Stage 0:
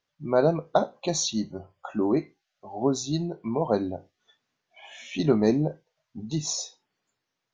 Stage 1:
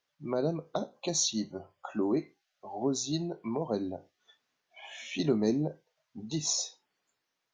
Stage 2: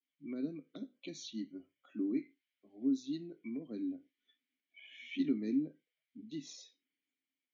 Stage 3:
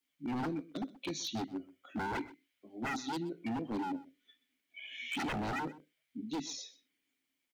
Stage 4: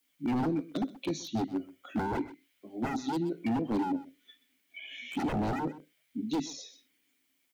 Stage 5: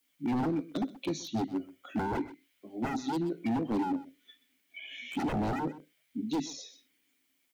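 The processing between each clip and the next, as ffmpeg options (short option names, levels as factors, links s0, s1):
-filter_complex "[0:a]lowshelf=f=210:g=-10.5,acrossover=split=390|4200[s0][s1][s2];[s1]acompressor=threshold=0.0141:ratio=5[s3];[s0][s3][s2]amix=inputs=3:normalize=0"
-filter_complex "[0:a]asplit=3[s0][s1][s2];[s0]bandpass=f=270:t=q:w=8,volume=1[s3];[s1]bandpass=f=2290:t=q:w=8,volume=0.501[s4];[s2]bandpass=f=3010:t=q:w=8,volume=0.355[s5];[s3][s4][s5]amix=inputs=3:normalize=0,adynamicequalizer=threshold=0.00141:dfrequency=1300:dqfactor=0.73:tfrequency=1300:tqfactor=0.73:attack=5:release=100:ratio=0.375:range=3:mode=boostabove:tftype=bell,volume=1.19"
-af "aeval=exprs='0.0106*(abs(mod(val(0)/0.0106+3,4)-2)-1)':c=same,aecho=1:1:127:0.112,volume=2.66"
-filter_complex "[0:a]acrossover=split=870[s0][s1];[s1]acompressor=threshold=0.00316:ratio=6[s2];[s0][s2]amix=inputs=2:normalize=0,crystalizer=i=0.5:c=0,volume=2.24"
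-af "volume=20,asoftclip=hard,volume=0.0501"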